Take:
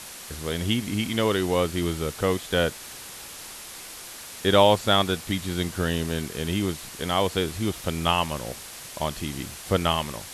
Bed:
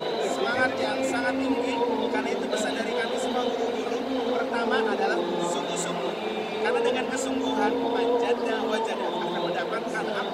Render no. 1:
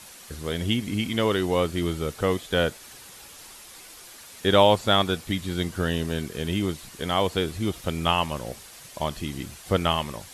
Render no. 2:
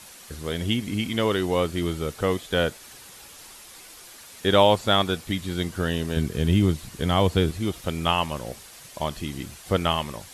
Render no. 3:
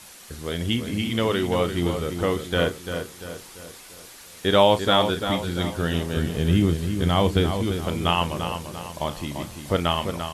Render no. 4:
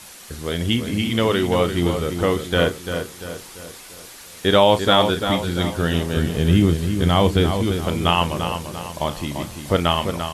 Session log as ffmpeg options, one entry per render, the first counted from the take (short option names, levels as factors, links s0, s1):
-af "afftdn=nr=7:nf=-41"
-filter_complex "[0:a]asettb=1/sr,asplit=3[s0][s1][s2];[s0]atrim=end=6.164[s3];[s1]atrim=start=6.16:end=7.51,asetpts=PTS-STARTPTS,afade=t=in:d=0.004:c=qsin,afade=t=out:st=1.346:d=0.004:c=qsin,equalizer=f=78:w=0.37:g=10.5[s4];[s2]atrim=start=7.506[s5];[s3][s4]acrossfade=d=0.004:c1=hsin:c2=qsin[s6];[s6][s5]acrossfade=d=0.004:c1=qsin:c2=hsin"
-filter_complex "[0:a]asplit=2[s0][s1];[s1]adelay=35,volume=0.251[s2];[s0][s2]amix=inputs=2:normalize=0,asplit=2[s3][s4];[s4]adelay=343,lowpass=f=3600:p=1,volume=0.422,asplit=2[s5][s6];[s6]adelay=343,lowpass=f=3600:p=1,volume=0.47,asplit=2[s7][s8];[s8]adelay=343,lowpass=f=3600:p=1,volume=0.47,asplit=2[s9][s10];[s10]adelay=343,lowpass=f=3600:p=1,volume=0.47,asplit=2[s11][s12];[s12]adelay=343,lowpass=f=3600:p=1,volume=0.47[s13];[s3][s5][s7][s9][s11][s13]amix=inputs=6:normalize=0"
-af "volume=1.58,alimiter=limit=0.708:level=0:latency=1"